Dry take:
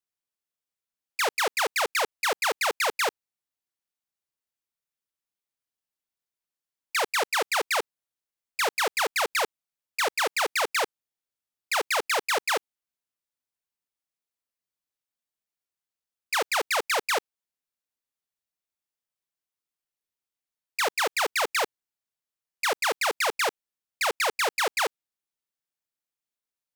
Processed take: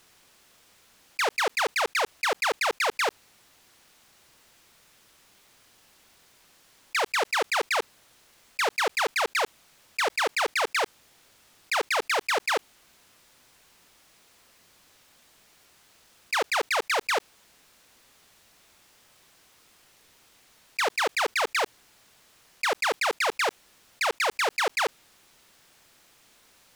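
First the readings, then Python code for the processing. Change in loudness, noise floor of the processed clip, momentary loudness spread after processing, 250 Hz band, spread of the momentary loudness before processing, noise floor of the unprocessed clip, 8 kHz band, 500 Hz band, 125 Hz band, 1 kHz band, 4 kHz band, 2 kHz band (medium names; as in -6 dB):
-0.5 dB, -60 dBFS, 5 LU, +1.5 dB, 4 LU, under -85 dBFS, -3.5 dB, +0.5 dB, no reading, 0.0 dB, -1.0 dB, +0.5 dB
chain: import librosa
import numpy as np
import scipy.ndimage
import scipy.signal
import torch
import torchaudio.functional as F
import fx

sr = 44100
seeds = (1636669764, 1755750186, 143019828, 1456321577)

y = fx.high_shelf(x, sr, hz=8800.0, db=-10.5)
y = fx.env_flatten(y, sr, amount_pct=50)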